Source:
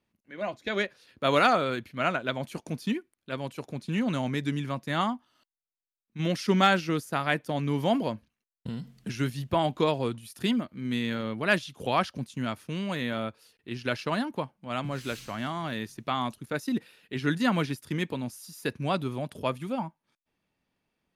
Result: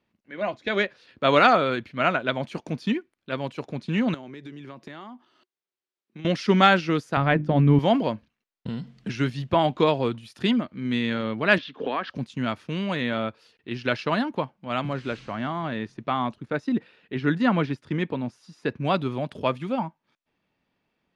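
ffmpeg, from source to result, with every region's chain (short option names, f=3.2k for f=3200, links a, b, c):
-filter_complex "[0:a]asettb=1/sr,asplit=3[a][b][c];[a]atrim=end=4.144[d];[b]atrim=start=4.14:end=6.25,asetpts=PTS-STARTPTS,afade=t=in:d=0.004:c=qsin,afade=t=out:st=2.106:d=0.004:c=qsin,highpass=140,equalizer=f=370:t=o:w=0.28:g=12,acompressor=threshold=-40dB:ratio=16:attack=3.2:release=140:knee=1:detection=peak[e];[c]atrim=start=6.246[f];[d][e]acrossfade=d=0.004:c1=hsin:c2=qsin[g];[g][f]acrossfade=d=0.004:c1=qsin:c2=hsin,asettb=1/sr,asplit=3[h][i][j];[h]atrim=end=7.174[k];[i]atrim=start=7.17:end=7.79,asetpts=PTS-STARTPTS,afade=t=in:d=0.004:c=qsin,afade=t=out:st=0.616:d=0.004:c=qsin,aemphasis=mode=reproduction:type=riaa,bandreject=f=50:t=h:w=6,bandreject=f=100:t=h:w=6,bandreject=f=150:t=h:w=6,bandreject=f=200:t=h:w=6,bandreject=f=250:t=h:w=6,bandreject=f=300:t=h:w=6,bandreject=f=350:t=h:w=6[l];[j]atrim=start=7.786[m];[k][l]acrossfade=d=0.004:c1=hsin:c2=qsin[n];[n][m]acrossfade=d=0.004:c1=qsin:c2=hsin,asettb=1/sr,asplit=3[o][p][q];[o]atrim=end=11.584[r];[p]atrim=start=11.58:end=12.1,asetpts=PTS-STARTPTS,afade=t=in:d=0.004:c=qsin,afade=t=out:st=0.516:d=0.004:c=qsin,highpass=220,equalizer=f=270:t=q:w=4:g=10,equalizer=f=440:t=q:w=4:g=8,equalizer=f=1.1k:t=q:w=4:g=5,equalizer=f=1.7k:t=q:w=4:g=9,lowpass=f=4.2k:w=0.5412,lowpass=f=4.2k:w=1.3066,acompressor=threshold=-28dB:ratio=5:attack=3.2:release=140:knee=1:detection=peak[s];[q]atrim=start=12.096[t];[r][s]acrossfade=d=0.004:c1=hsin:c2=qsin[u];[u][t]acrossfade=d=0.004:c1=qsin:c2=hsin,asettb=1/sr,asplit=3[v][w][x];[v]atrim=end=14.934[y];[w]atrim=start=14.93:end=18.85,asetpts=PTS-STARTPTS,afade=t=in:d=0.004:c=qsin,afade=t=out:st=3.916:d=0.004:c=qsin,lowpass=f=11k:w=0.5412,lowpass=f=11k:w=1.3066,highshelf=f=2.8k:g=-10[z];[x]atrim=start=18.846[aa];[y][z]acrossfade=d=0.004:c1=hsin:c2=qsin[ab];[ab][aa]acrossfade=d=0.004:c1=qsin:c2=hsin,lowpass=4.4k,lowshelf=f=92:g=-6,volume=5dB"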